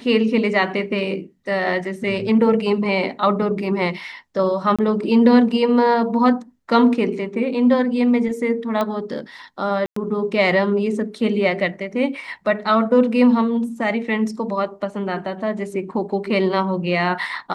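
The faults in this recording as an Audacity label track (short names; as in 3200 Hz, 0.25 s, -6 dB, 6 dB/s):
4.760000	4.790000	gap 26 ms
8.810000	8.810000	pop -10 dBFS
9.860000	9.960000	gap 0.104 s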